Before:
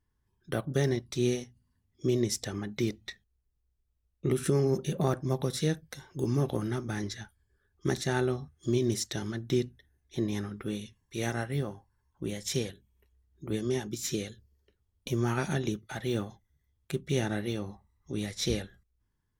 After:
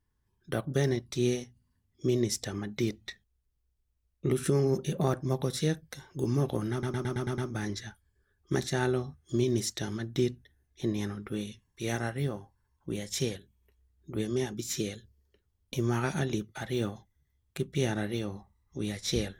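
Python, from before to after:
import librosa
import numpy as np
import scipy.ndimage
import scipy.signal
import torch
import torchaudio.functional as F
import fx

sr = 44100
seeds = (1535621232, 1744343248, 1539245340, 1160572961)

y = fx.edit(x, sr, fx.stutter(start_s=6.72, slice_s=0.11, count=7), tone=tone)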